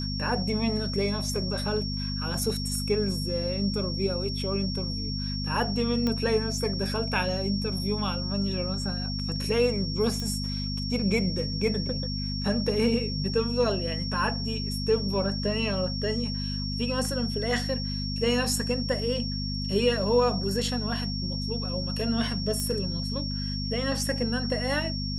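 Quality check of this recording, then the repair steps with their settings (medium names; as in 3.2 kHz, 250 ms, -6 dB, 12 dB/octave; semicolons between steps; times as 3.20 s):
hum 50 Hz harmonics 5 -32 dBFS
whine 5.5 kHz -34 dBFS
6.07 s: pop -15 dBFS
10.20 s: pop -19 dBFS
22.60 s: pop -16 dBFS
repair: de-click; band-stop 5.5 kHz, Q 30; de-hum 50 Hz, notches 5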